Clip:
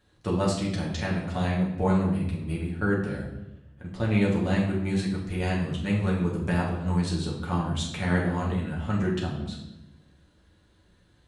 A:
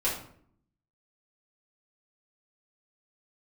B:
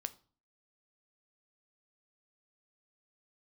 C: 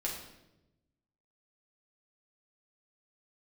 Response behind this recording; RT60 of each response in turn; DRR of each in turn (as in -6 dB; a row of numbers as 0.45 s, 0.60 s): C; 0.60 s, 0.40 s, 0.95 s; -8.0 dB, 11.5 dB, -4.5 dB